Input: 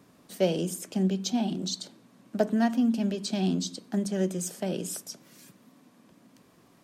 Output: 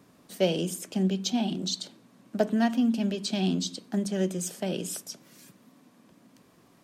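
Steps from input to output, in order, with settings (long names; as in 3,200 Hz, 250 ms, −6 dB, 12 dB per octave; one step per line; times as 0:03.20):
dynamic equaliser 3,000 Hz, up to +5 dB, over −49 dBFS, Q 1.5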